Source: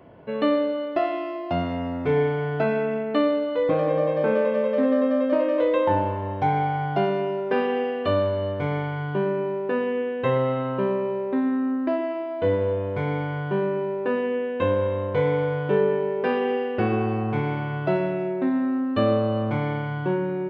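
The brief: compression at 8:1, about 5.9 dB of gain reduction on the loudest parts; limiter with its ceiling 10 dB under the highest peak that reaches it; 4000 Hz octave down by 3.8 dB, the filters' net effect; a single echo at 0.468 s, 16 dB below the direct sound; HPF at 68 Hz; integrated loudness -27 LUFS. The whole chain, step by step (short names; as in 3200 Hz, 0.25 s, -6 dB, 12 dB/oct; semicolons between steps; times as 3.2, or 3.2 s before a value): HPF 68 Hz; bell 4000 Hz -6 dB; compressor 8:1, threshold -23 dBFS; limiter -24 dBFS; echo 0.468 s -16 dB; gain +4 dB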